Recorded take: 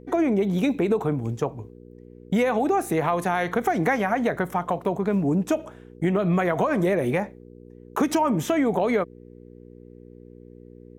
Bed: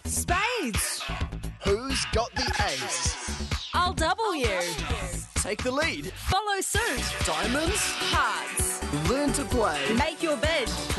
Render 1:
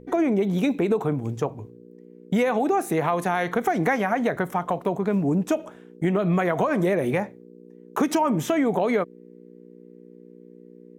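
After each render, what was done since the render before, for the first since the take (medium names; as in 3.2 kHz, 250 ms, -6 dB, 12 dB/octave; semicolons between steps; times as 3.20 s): de-hum 60 Hz, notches 2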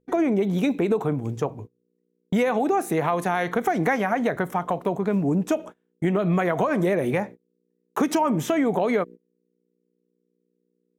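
gate -37 dBFS, range -26 dB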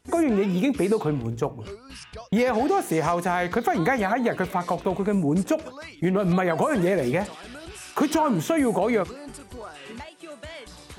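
add bed -14.5 dB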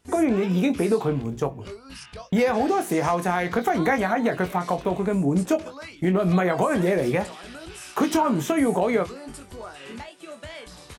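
doubling 22 ms -8 dB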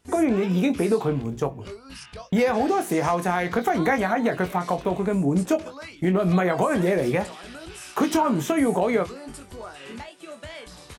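no audible change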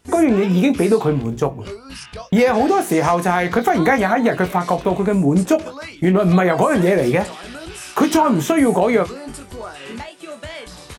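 trim +6.5 dB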